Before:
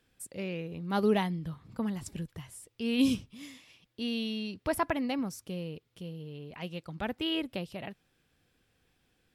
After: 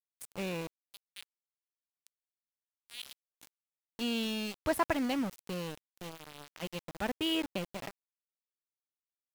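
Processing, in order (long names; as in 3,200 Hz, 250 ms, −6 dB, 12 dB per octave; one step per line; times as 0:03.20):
0:00.67–0:03.32: four-pole ladder high-pass 2,900 Hz, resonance 50%
centre clipping without the shift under −37 dBFS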